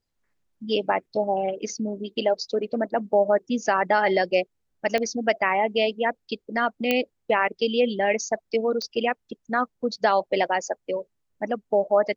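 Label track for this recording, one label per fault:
4.980000	4.980000	pop -13 dBFS
6.910000	6.910000	pop -8 dBFS
8.820000	8.820000	pop -19 dBFS

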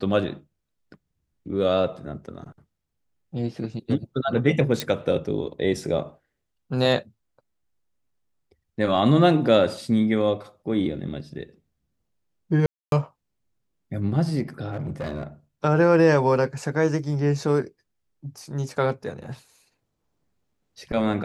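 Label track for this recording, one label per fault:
4.800000	4.800000	pop
12.660000	12.920000	gap 0.262 s
14.710000	15.230000	clipped -25 dBFS

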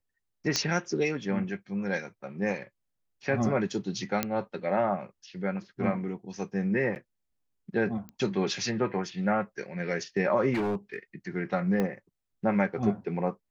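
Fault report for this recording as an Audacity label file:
0.560000	0.560000	pop -11 dBFS
4.230000	4.230000	pop -10 dBFS
6.950000	6.960000	gap 9.3 ms
8.090000	8.090000	pop -28 dBFS
10.530000	10.960000	clipped -25.5 dBFS
11.800000	11.800000	pop -16 dBFS

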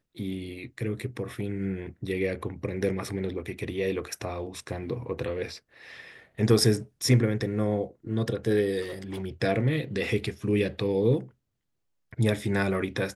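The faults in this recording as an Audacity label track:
8.810000	9.240000	clipped -31 dBFS

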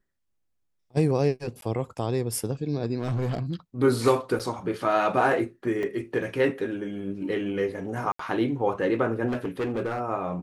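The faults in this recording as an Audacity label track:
1.610000	1.620000	gap 12 ms
2.980000	3.540000	clipped -23 dBFS
4.390000	4.400000	gap 7.2 ms
5.830000	5.830000	gap 2.4 ms
8.120000	8.190000	gap 74 ms
9.270000	10.010000	clipped -24 dBFS

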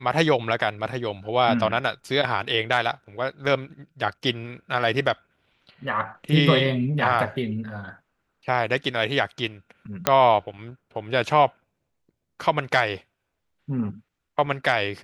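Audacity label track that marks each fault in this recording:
10.070000	10.070000	pop -2 dBFS

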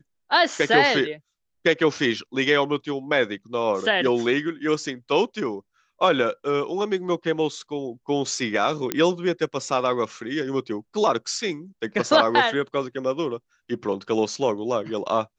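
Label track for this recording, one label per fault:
8.920000	8.920000	pop -7 dBFS

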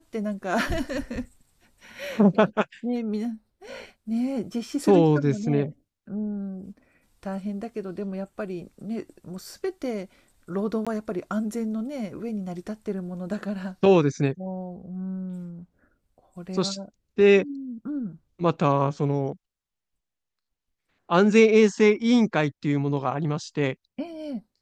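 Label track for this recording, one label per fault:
10.850000	10.870000	gap 16 ms

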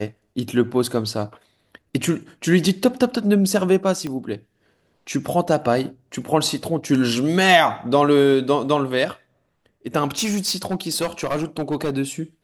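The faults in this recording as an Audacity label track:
4.070000	4.070000	pop -16 dBFS
10.060000	11.910000	clipped -17.5 dBFS

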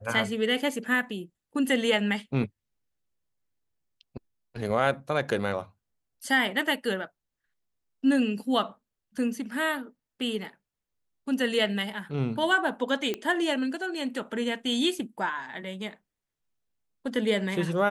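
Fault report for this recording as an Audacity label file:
13.140000	13.140000	pop -16 dBFS

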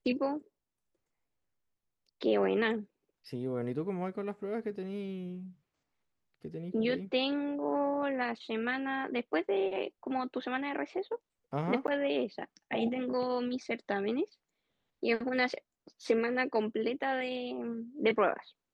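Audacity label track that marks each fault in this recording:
11.870000	11.880000	gap 9.6 ms

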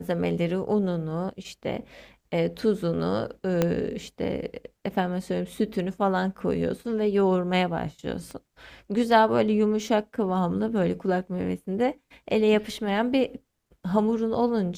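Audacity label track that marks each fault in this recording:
3.620000	3.620000	pop -9 dBFS
8.310000	8.310000	pop -27 dBFS

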